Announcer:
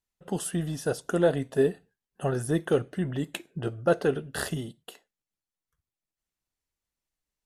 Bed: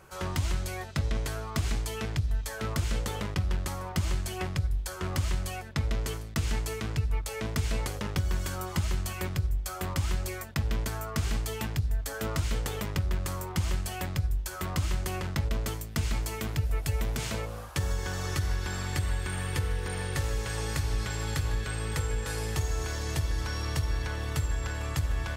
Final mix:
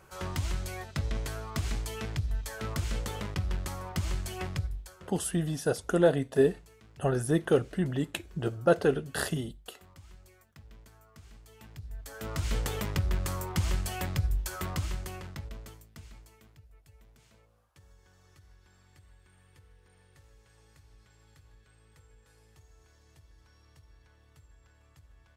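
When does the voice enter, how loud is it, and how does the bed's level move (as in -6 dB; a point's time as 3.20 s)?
4.80 s, 0.0 dB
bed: 4.59 s -3 dB
5.20 s -23.5 dB
11.40 s -23.5 dB
12.55 s 0 dB
14.54 s 0 dB
16.72 s -29 dB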